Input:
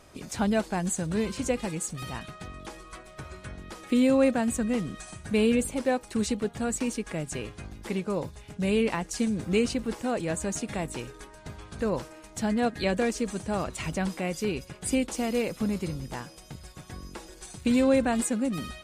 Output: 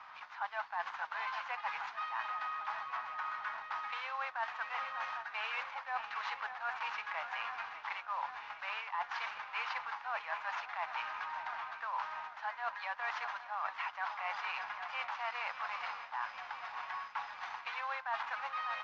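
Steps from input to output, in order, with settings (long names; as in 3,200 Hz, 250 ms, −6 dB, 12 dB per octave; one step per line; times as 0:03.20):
variable-slope delta modulation 32 kbit/s
Butterworth high-pass 870 Hz 48 dB per octave
feedback echo with a long and a short gap by turns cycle 798 ms, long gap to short 3 to 1, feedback 68%, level −17 dB
in parallel at −9 dB: dead-zone distortion −58 dBFS
on the sum: low-pass filter 1,300 Hz 12 dB per octave
reversed playback
downward compressor 10 to 1, threshold −47 dBFS, peak gain reduction 17 dB
reversed playback
level +12 dB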